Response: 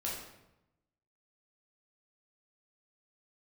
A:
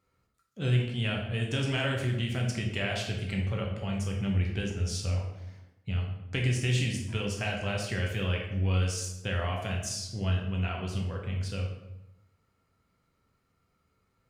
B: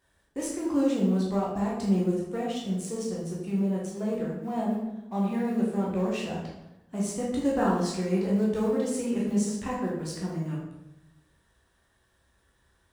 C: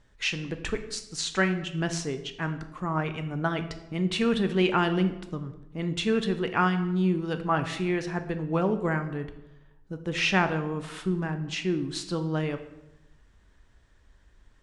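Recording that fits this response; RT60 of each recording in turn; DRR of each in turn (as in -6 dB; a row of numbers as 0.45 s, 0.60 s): B; 0.90 s, 0.90 s, 0.90 s; -0.5 dB, -5.0 dB, 8.0 dB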